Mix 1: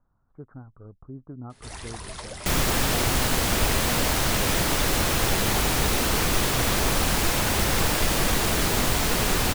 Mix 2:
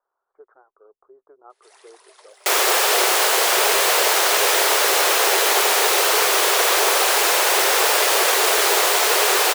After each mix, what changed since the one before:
first sound -11.5 dB; second sound +9.0 dB; master: add elliptic high-pass 390 Hz, stop band 40 dB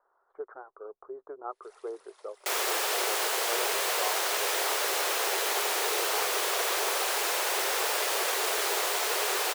speech +9.0 dB; first sound -10.0 dB; second sound -11.5 dB

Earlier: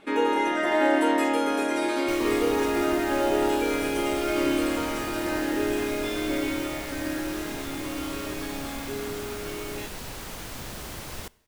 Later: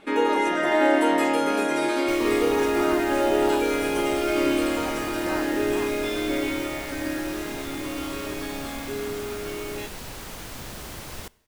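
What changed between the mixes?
speech +11.0 dB; first sound: send on

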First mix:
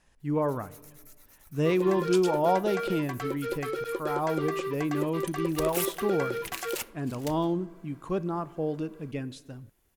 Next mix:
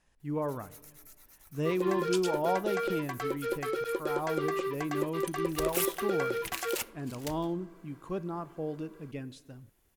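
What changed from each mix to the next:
speech -5.5 dB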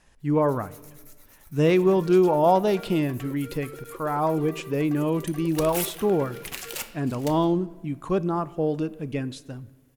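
speech +11.0 dB; first sound: send on; second sound -9.5 dB

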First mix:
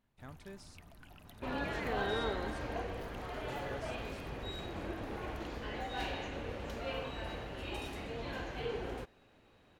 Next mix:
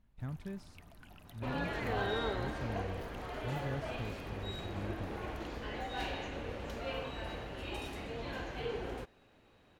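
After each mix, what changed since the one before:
speech: add tone controls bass +15 dB, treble -7 dB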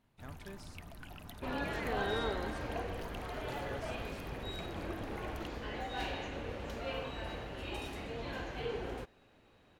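speech: add tone controls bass -15 dB, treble +7 dB; first sound +6.5 dB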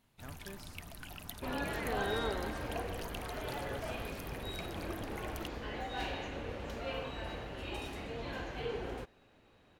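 first sound: add high shelf 2800 Hz +10 dB

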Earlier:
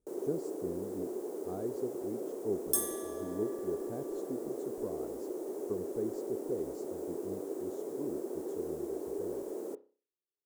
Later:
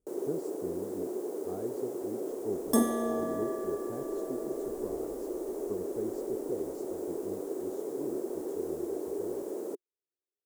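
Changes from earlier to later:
first sound +5.5 dB; second sound: remove differentiator; reverb: off

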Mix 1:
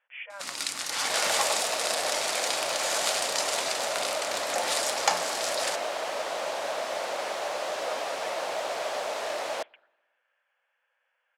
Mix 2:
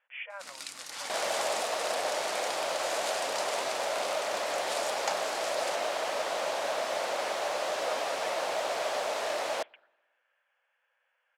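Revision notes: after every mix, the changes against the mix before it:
first sound -10.0 dB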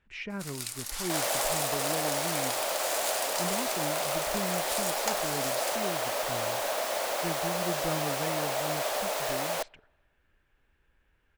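speech: remove brick-wall FIR band-pass 480–3500 Hz; master: remove Bessel low-pass 5700 Hz, order 2

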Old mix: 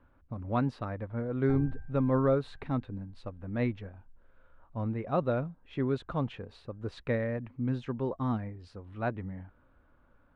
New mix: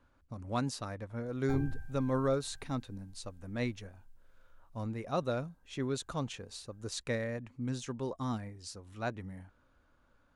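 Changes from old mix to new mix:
speech -5.5 dB; master: remove air absorption 470 m

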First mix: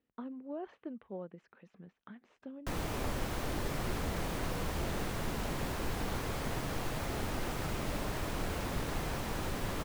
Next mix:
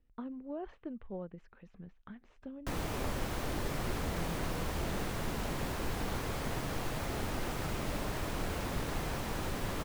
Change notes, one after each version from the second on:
speech: remove HPF 190 Hz 12 dB/oct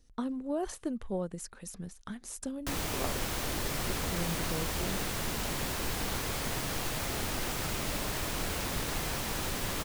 speech: remove ladder low-pass 3300 Hz, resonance 35%; master: add high shelf 2300 Hz +10.5 dB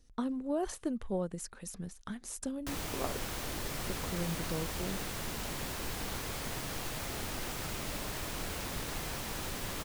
background -4.5 dB

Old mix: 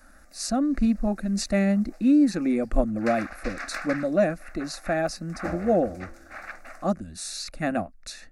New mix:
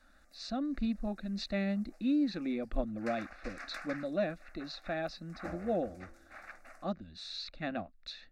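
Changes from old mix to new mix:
speech: add ladder low-pass 4100 Hz, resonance 65%; background -10.5 dB

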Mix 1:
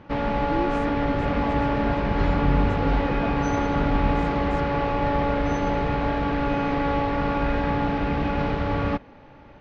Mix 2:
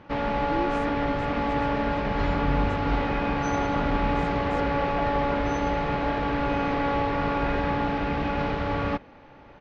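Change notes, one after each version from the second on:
second sound: entry +1.75 s; master: add low shelf 380 Hz -4.5 dB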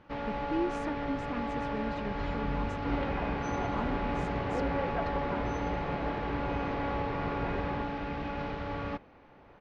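first sound -9.0 dB

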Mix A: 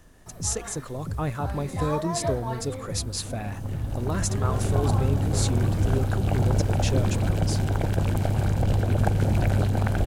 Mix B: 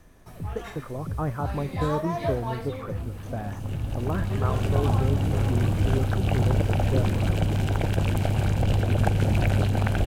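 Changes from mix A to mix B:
speech: add inverse Chebyshev low-pass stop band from 6600 Hz, stop band 70 dB; master: add bell 2700 Hz +7 dB 0.68 oct

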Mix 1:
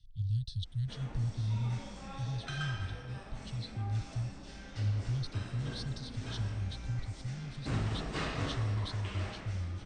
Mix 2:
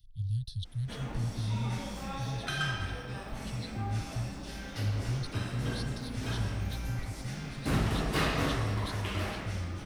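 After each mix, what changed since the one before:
background +7.0 dB; master: remove steep low-pass 8800 Hz 96 dB/oct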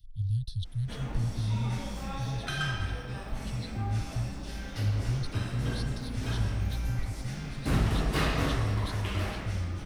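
master: add low shelf 78 Hz +8.5 dB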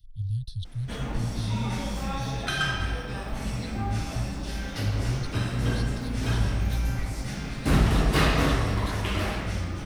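background +6.0 dB

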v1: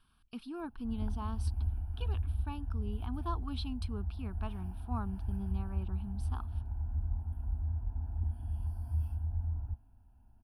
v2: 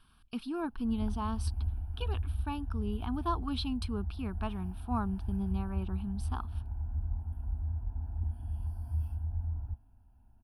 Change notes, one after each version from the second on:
speech +6.0 dB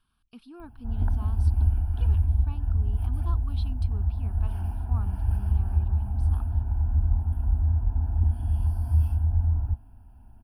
speech -10.0 dB; background +11.5 dB

